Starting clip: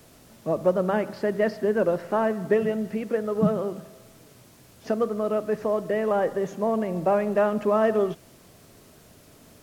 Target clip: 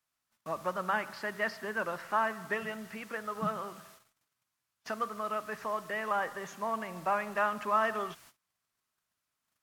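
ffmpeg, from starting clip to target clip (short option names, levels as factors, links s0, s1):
-af "agate=range=0.0398:threshold=0.00447:ratio=16:detection=peak,lowshelf=f=740:t=q:w=1.5:g=-13.5,volume=0.891"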